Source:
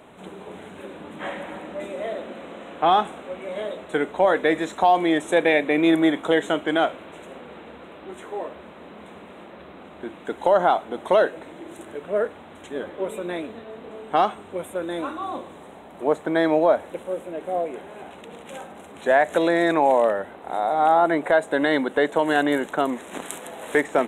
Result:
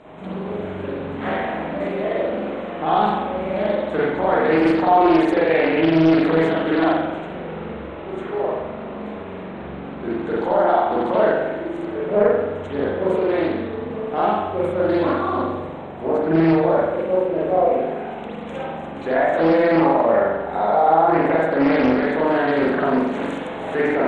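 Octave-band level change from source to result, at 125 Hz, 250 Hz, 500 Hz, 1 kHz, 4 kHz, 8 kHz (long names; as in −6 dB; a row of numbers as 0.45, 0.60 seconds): +11.5 dB, +6.0 dB, +4.0 dB, +3.0 dB, −2.0 dB, can't be measured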